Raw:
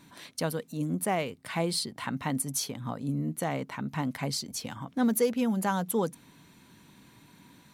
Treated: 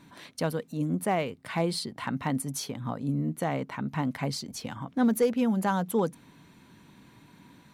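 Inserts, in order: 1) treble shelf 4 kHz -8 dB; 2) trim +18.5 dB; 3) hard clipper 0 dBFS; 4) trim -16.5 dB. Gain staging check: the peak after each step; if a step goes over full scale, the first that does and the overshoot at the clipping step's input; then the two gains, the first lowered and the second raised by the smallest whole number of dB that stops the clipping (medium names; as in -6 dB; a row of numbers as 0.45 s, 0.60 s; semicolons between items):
-15.5 dBFS, +3.0 dBFS, 0.0 dBFS, -16.5 dBFS; step 2, 3.0 dB; step 2 +15.5 dB, step 4 -13.5 dB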